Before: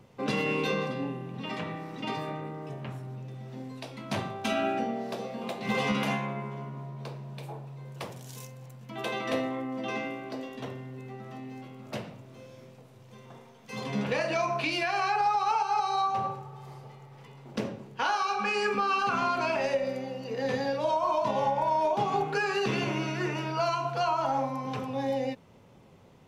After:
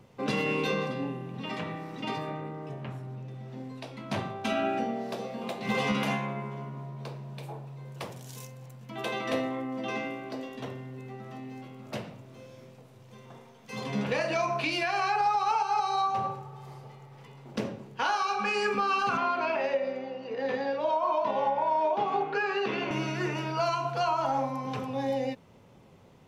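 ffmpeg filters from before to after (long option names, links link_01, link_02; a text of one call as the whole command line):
ffmpeg -i in.wav -filter_complex "[0:a]asettb=1/sr,asplit=3[link_01][link_02][link_03];[link_01]atrim=end=2.184[link_04];[link_02]atrim=start=2.18:end=4.73,asetpts=PTS-STARTPTS,afade=type=in:duration=0.004:curve=qsin,afade=type=out:start_time=2.546:duration=0.004:curve=qsin,highshelf=frequency=5100:gain=-6[link_05];[link_03]atrim=start=4.726[link_06];[link_04][link_05]acrossfade=duration=0.004:curve1=hsin:curve2=qsin[link_07];[link_07][link_06]acrossfade=duration=0.004:curve1=qsin:curve2=hsin,asettb=1/sr,asplit=3[link_08][link_09][link_10];[link_08]atrim=end=19.174[link_11];[link_09]atrim=start=19.17:end=22.91,asetpts=PTS-STARTPTS,afade=type=in:duration=0.004:curve=qsin,afade=type=out:start_time=3.736:duration=0.004:curve=qsin,highpass=260,lowpass=3300[link_12];[link_10]atrim=start=22.906[link_13];[link_11][link_12]acrossfade=duration=0.004:curve1=hsin:curve2=qsin[link_14];[link_14][link_13]acrossfade=duration=0.004:curve1=qsin:curve2=hsin" out.wav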